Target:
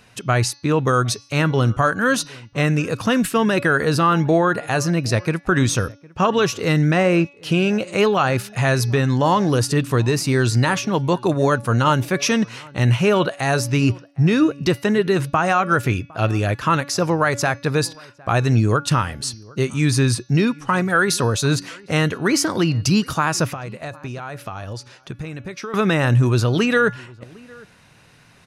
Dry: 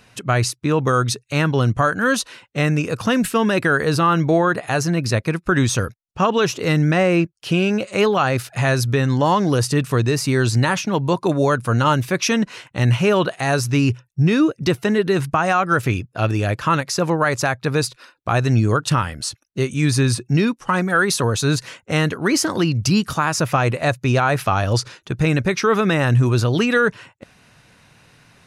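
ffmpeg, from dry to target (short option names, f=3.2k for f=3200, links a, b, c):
-filter_complex "[0:a]bandreject=f=284.3:t=h:w=4,bandreject=f=568.6:t=h:w=4,bandreject=f=852.9:t=h:w=4,bandreject=f=1.1372k:t=h:w=4,bandreject=f=1.4215k:t=h:w=4,bandreject=f=1.7058k:t=h:w=4,bandreject=f=1.9901k:t=h:w=4,bandreject=f=2.2744k:t=h:w=4,bandreject=f=2.5587k:t=h:w=4,bandreject=f=2.843k:t=h:w=4,bandreject=f=3.1273k:t=h:w=4,bandreject=f=3.4116k:t=h:w=4,bandreject=f=3.6959k:t=h:w=4,bandreject=f=3.9802k:t=h:w=4,bandreject=f=4.2645k:t=h:w=4,bandreject=f=4.5488k:t=h:w=4,bandreject=f=4.8331k:t=h:w=4,bandreject=f=5.1174k:t=h:w=4,bandreject=f=5.4017k:t=h:w=4,bandreject=f=5.686k:t=h:w=4,bandreject=f=5.9703k:t=h:w=4,bandreject=f=6.2546k:t=h:w=4,asettb=1/sr,asplit=3[a][b][c];[a]atrim=end=23.494[d];[b]atrim=start=23.49:end=25.74,asetpts=PTS-STARTPTS,afade=t=in:d=0.004:c=qsin,afade=t=out:st=2.246:d=0.004:c=qsin,acompressor=threshold=-29dB:ratio=6[e];[c]atrim=start=25.736[f];[d][e]acrossfade=d=0.004:c1=hsin:c2=qsin[g];[g][f]acrossfade=d=0.004:c1=qsin:c2=hsin,asplit=2[h][i];[i]adelay=758,volume=-24dB,highshelf=f=4k:g=-17.1[j];[h][j]amix=inputs=2:normalize=0"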